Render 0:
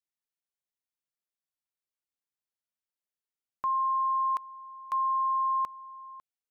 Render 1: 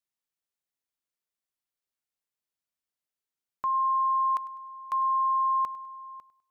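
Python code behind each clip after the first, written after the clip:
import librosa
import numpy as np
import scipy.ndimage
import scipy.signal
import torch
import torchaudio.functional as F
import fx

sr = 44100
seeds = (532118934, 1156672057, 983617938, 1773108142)

y = fx.echo_feedback(x, sr, ms=101, feedback_pct=36, wet_db=-18.0)
y = y * librosa.db_to_amplitude(1.0)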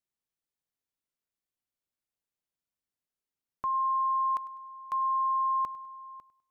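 y = fx.low_shelf(x, sr, hz=500.0, db=8.0)
y = y * librosa.db_to_amplitude(-4.0)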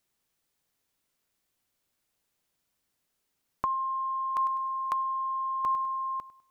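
y = fx.over_compress(x, sr, threshold_db=-33.0, ratio=-0.5)
y = y * librosa.db_to_amplitude(6.5)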